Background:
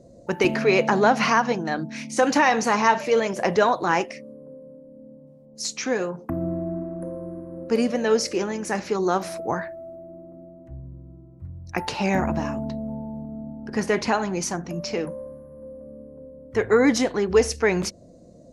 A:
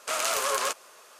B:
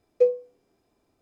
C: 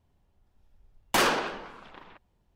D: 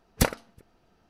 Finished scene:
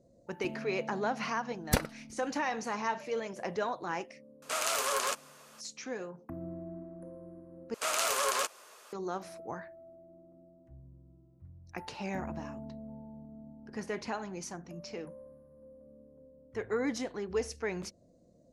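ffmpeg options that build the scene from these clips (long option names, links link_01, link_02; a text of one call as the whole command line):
ffmpeg -i bed.wav -i cue0.wav -i cue1.wav -i cue2.wav -i cue3.wav -filter_complex "[1:a]asplit=2[link_01][link_02];[0:a]volume=-14.5dB,asplit=2[link_03][link_04];[link_03]atrim=end=7.744[link_05];[link_02]atrim=end=1.19,asetpts=PTS-STARTPTS,volume=-3dB[link_06];[link_04]atrim=start=8.926[link_07];[4:a]atrim=end=1.09,asetpts=PTS-STARTPTS,volume=-5dB,afade=type=in:duration=0.004:curve=hsin,afade=type=out:start_time=1.086:duration=0.004:curve=hsin,adelay=1520[link_08];[link_01]atrim=end=1.19,asetpts=PTS-STARTPTS,volume=-4dB,afade=type=in:duration=0.004:curve=hsin,afade=type=out:start_time=1.186:duration=0.004:curve=hsin,adelay=4420[link_09];[link_05][link_06]acrossfade=duration=0.004:curve1=hsin:curve2=hsin[link_10];[link_10][link_07]acrossfade=duration=0.004:curve1=hsin:curve2=hsin[link_11];[link_11][link_08][link_09]amix=inputs=3:normalize=0" out.wav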